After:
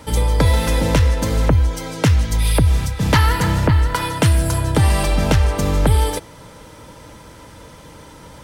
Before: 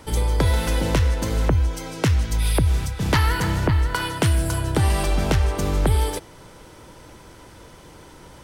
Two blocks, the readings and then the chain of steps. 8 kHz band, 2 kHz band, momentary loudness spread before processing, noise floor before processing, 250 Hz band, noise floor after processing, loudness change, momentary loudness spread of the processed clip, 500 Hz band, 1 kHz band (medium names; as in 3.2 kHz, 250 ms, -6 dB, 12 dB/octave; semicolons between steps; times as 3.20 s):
+4.0 dB, +3.5 dB, 3 LU, -46 dBFS, +4.5 dB, -41 dBFS, +4.5 dB, 3 LU, +4.5 dB, +5.0 dB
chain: comb of notches 370 Hz; trim +5.5 dB